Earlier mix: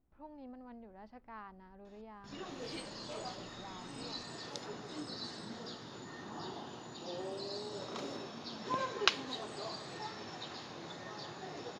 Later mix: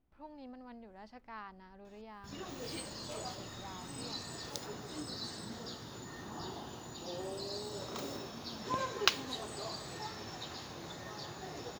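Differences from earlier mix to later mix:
speech: remove low-pass filter 1,400 Hz 6 dB per octave
background: remove band-pass filter 140–5,400 Hz

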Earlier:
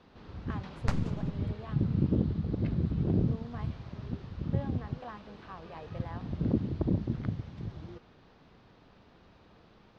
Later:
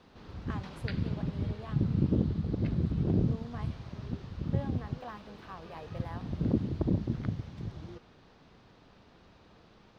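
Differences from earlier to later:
second sound: add linear-phase brick-wall band-pass 1,400–4,900 Hz
master: remove high-frequency loss of the air 76 metres

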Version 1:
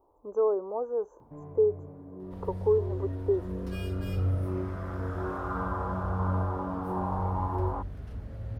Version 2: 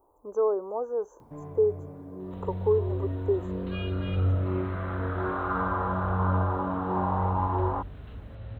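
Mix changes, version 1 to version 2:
first sound +3.0 dB
second sound: add Chebyshev low-pass with heavy ripple 4,000 Hz, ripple 3 dB
master: add high-shelf EQ 2,100 Hz +11 dB

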